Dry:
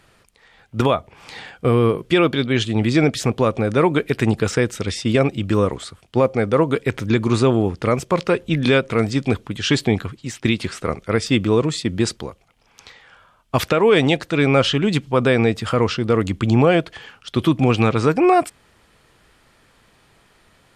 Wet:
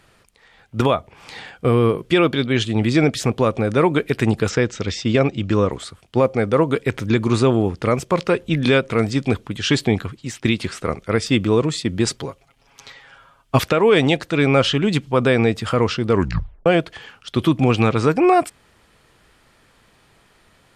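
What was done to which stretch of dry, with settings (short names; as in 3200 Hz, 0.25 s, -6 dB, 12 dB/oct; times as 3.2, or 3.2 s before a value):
4.49–5.71 steep low-pass 7400 Hz 48 dB/oct
12.06–13.6 comb 7.3 ms, depth 81%
16.11 tape stop 0.55 s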